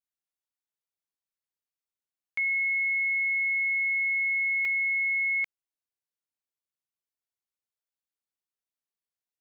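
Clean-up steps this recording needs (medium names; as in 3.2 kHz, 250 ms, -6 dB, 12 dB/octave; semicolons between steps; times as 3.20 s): interpolate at 4.65 s, 2 ms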